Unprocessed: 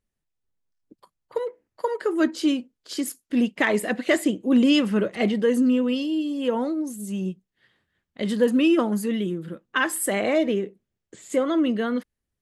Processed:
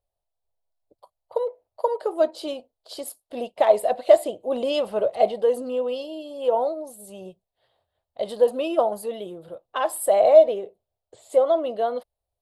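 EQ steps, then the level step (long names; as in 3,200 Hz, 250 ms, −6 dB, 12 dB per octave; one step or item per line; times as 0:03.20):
drawn EQ curve 100 Hz 0 dB, 190 Hz −16 dB, 290 Hz −14 dB, 660 Hz +15 dB, 1,800 Hz −14 dB, 4,100 Hz +1 dB, 6,400 Hz −11 dB, 9,200 Hz −1 dB
−1.5 dB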